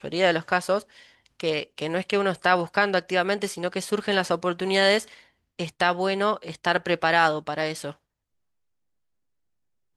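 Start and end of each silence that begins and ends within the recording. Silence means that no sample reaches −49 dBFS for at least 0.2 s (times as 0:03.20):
0:05.24–0:05.59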